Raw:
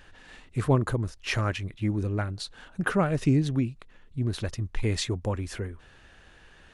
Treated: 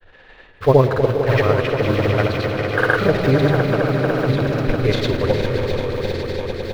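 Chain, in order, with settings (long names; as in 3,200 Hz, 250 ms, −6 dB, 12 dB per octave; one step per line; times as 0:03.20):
high-shelf EQ 2,400 Hz −12 dB
in parallel at −5.5 dB: bit reduction 6 bits
on the sum: octave-band graphic EQ 250/500/2,000/4,000/8,000 Hz −7/+10/+6/+8/−9 dB
echo that builds up and dies away 127 ms, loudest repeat 5, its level −9.5 dB
on a send at −9 dB: convolution reverb RT60 3.1 s, pre-delay 45 ms
on the sum: granular cloud, pitch spread up and down by 0 semitones
level +4 dB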